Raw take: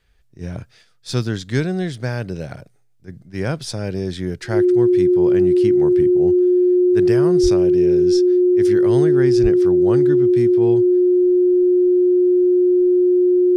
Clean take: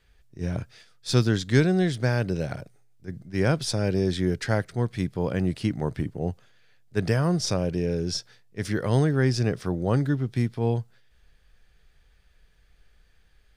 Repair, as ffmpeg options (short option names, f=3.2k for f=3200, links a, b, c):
-filter_complex "[0:a]bandreject=f=360:w=30,asplit=3[a][b][c];[a]afade=t=out:st=7.42:d=0.02[d];[b]highpass=f=140:w=0.5412,highpass=f=140:w=1.3066,afade=t=in:st=7.42:d=0.02,afade=t=out:st=7.54:d=0.02[e];[c]afade=t=in:st=7.54:d=0.02[f];[d][e][f]amix=inputs=3:normalize=0,asplit=3[g][h][i];[g]afade=t=out:st=9.42:d=0.02[j];[h]highpass=f=140:w=0.5412,highpass=f=140:w=1.3066,afade=t=in:st=9.42:d=0.02,afade=t=out:st=9.54:d=0.02[k];[i]afade=t=in:st=9.54:d=0.02[l];[j][k][l]amix=inputs=3:normalize=0"